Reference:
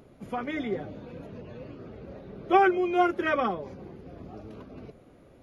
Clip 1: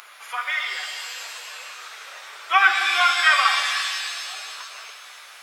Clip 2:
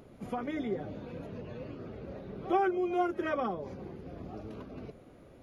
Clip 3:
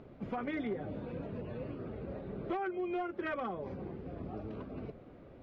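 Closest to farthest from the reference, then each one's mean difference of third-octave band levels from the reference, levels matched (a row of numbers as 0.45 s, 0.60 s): 2, 3, 1; 4.0 dB, 6.0 dB, 20.5 dB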